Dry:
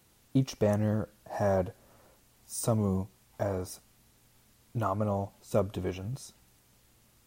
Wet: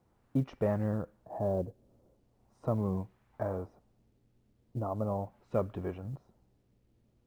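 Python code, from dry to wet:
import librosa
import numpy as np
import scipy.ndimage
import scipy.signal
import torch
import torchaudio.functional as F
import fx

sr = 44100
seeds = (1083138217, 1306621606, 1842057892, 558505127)

y = fx.filter_lfo_lowpass(x, sr, shape='sine', hz=0.4, low_hz=400.0, high_hz=1800.0, q=1.0)
y = fx.quant_companded(y, sr, bits=8)
y = y * librosa.db_to_amplitude(-3.5)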